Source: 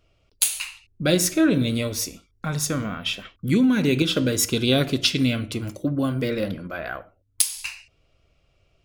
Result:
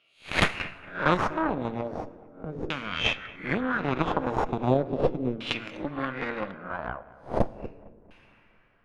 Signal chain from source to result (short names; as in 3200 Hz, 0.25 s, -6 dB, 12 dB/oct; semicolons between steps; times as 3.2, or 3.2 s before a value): spectral swells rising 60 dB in 0.40 s; HPF 150 Hz 24 dB/oct; tilt shelf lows -6 dB, about 830 Hz; in parallel at +2.5 dB: compressor, threshold -27 dBFS, peak gain reduction 19.5 dB; on the sum: added harmonics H 4 -9 dB, 6 -25 dB, 7 -18 dB, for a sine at 10 dBFS; overloaded stage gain 4.5 dB; plate-style reverb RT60 3.5 s, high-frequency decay 0.5×, DRR 18.5 dB; LFO low-pass saw down 0.37 Hz 380–3000 Hz; on a send: analogue delay 0.227 s, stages 4096, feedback 40%, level -20 dB; on the sum: gain +4.5 dB